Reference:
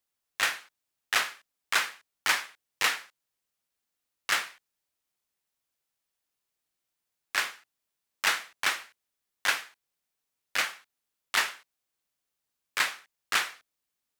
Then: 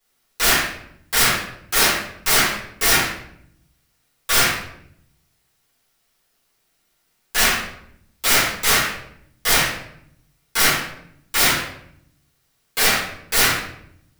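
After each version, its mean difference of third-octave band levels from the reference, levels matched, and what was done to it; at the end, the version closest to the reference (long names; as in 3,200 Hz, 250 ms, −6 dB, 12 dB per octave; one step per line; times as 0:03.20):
13.5 dB: in parallel at −2.5 dB: brickwall limiter −21.5 dBFS, peak gain reduction 10.5 dB
on the sum: wrap-around overflow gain 21.5 dB
rectangular room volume 150 cubic metres, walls mixed, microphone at 4 metres
level +1 dB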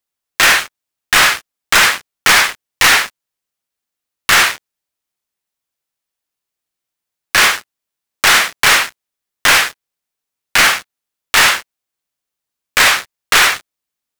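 7.0 dB: stylus tracing distortion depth 0.028 ms
in parallel at −2.5 dB: compressor whose output falls as the input rises −32 dBFS, ratio −0.5
on the sum: leveller curve on the samples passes 5
level +4.5 dB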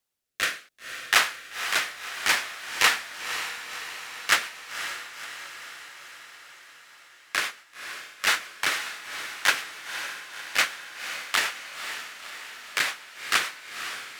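4.0 dB: rotating-speaker cabinet horn 0.65 Hz, later 7 Hz, at 0:02.89
on a send: feedback delay with all-pass diffusion 524 ms, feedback 62%, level −9 dB
on the sum: level +6.5 dB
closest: third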